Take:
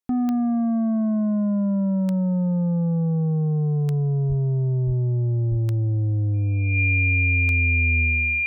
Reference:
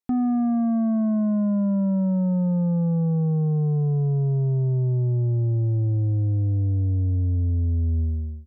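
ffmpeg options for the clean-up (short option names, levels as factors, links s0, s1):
-filter_complex "[0:a]adeclick=t=4,bandreject=f=2400:w=30,asplit=3[s0][s1][s2];[s0]afade=t=out:st=4.28:d=0.02[s3];[s1]highpass=f=140:w=0.5412,highpass=f=140:w=1.3066,afade=t=in:st=4.28:d=0.02,afade=t=out:st=4.4:d=0.02[s4];[s2]afade=t=in:st=4.4:d=0.02[s5];[s3][s4][s5]amix=inputs=3:normalize=0,asplit=3[s6][s7][s8];[s6]afade=t=out:st=4.86:d=0.02[s9];[s7]highpass=f=140:w=0.5412,highpass=f=140:w=1.3066,afade=t=in:st=4.86:d=0.02,afade=t=out:st=4.98:d=0.02[s10];[s8]afade=t=in:st=4.98:d=0.02[s11];[s9][s10][s11]amix=inputs=3:normalize=0,asplit=3[s12][s13][s14];[s12]afade=t=out:st=5.5:d=0.02[s15];[s13]highpass=f=140:w=0.5412,highpass=f=140:w=1.3066,afade=t=in:st=5.5:d=0.02,afade=t=out:st=5.62:d=0.02[s16];[s14]afade=t=in:st=5.62:d=0.02[s17];[s15][s16][s17]amix=inputs=3:normalize=0"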